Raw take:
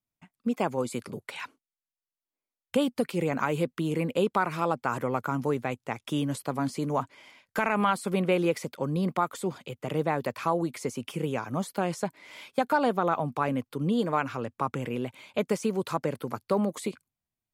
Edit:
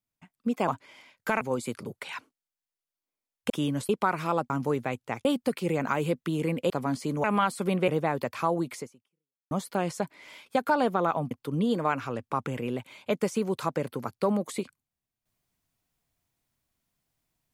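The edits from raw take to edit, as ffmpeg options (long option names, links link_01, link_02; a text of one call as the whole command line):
ffmpeg -i in.wav -filter_complex "[0:a]asplit=13[link_01][link_02][link_03][link_04][link_05][link_06][link_07][link_08][link_09][link_10][link_11][link_12][link_13];[link_01]atrim=end=0.682[link_14];[link_02]atrim=start=6.968:end=7.702[link_15];[link_03]atrim=start=0.678:end=2.772[link_16];[link_04]atrim=start=6.038:end=6.432[link_17];[link_05]atrim=start=4.218:end=4.832[link_18];[link_06]atrim=start=5.288:end=6.042[link_19];[link_07]atrim=start=2.768:end=4.222[link_20];[link_08]atrim=start=6.428:end=6.972[link_21];[link_09]atrim=start=7.698:end=8.342[link_22];[link_10]atrim=start=9.908:end=11.54,asetpts=PTS-STARTPTS,afade=type=out:start_time=0.902:duration=0.73:curve=exp[link_23];[link_11]atrim=start=11.54:end=12.49,asetpts=PTS-STARTPTS,afade=type=in:duration=0.004:curve=hsin,afade=type=out:start_time=0.66:duration=0.29:curve=qsin:silence=0.446684[link_24];[link_12]atrim=start=12.49:end=13.342,asetpts=PTS-STARTPTS,afade=type=in:duration=0.004:curve=hsin:silence=0.446684[link_25];[link_13]atrim=start=13.588[link_26];[link_14][link_15]acrossfade=duration=0.004:curve1=hsin:curve2=hsin[link_27];[link_27][link_16]acrossfade=duration=0.004:curve1=hsin:curve2=hsin[link_28];[link_28][link_17]acrossfade=duration=0.004:curve1=hsin:curve2=hsin[link_29];[link_29][link_18]acrossfade=duration=0.004:curve1=hsin:curve2=hsin[link_30];[link_30][link_19]acrossfade=duration=0.004:curve1=hsin:curve2=hsin[link_31];[link_31][link_20]acrossfade=duration=0.004:curve1=hsin:curve2=hsin[link_32];[link_32][link_21]acrossfade=duration=0.004:curve1=hsin:curve2=hsin[link_33];[link_33][link_22]acrossfade=duration=0.004:curve1=hsin:curve2=hsin[link_34];[link_23][link_24][link_25]concat=n=3:v=0:a=1[link_35];[link_34][link_35]acrossfade=duration=0.004:curve1=hsin:curve2=hsin[link_36];[link_36][link_26]acrossfade=duration=0.004:curve1=hsin:curve2=hsin" out.wav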